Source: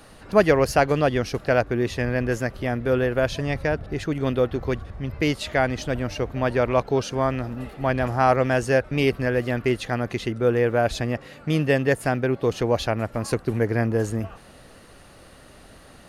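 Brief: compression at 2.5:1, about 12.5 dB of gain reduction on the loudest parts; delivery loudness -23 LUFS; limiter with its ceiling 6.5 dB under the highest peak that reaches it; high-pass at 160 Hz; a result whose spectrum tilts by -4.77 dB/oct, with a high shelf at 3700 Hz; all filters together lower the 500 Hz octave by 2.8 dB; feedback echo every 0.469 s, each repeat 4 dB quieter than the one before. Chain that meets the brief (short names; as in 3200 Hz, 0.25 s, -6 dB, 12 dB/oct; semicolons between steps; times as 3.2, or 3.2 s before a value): HPF 160 Hz; bell 500 Hz -3.5 dB; high shelf 3700 Hz +3.5 dB; compressor 2.5:1, threshold -33 dBFS; limiter -22 dBFS; feedback echo 0.469 s, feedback 63%, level -4 dB; gain +10.5 dB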